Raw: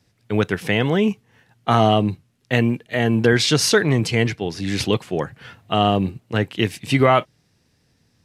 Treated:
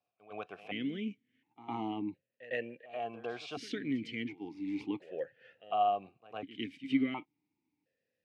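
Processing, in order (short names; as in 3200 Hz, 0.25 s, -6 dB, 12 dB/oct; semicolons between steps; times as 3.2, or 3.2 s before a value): reverse echo 0.106 s -15.5 dB; vowel sequencer 1.4 Hz; gain -7 dB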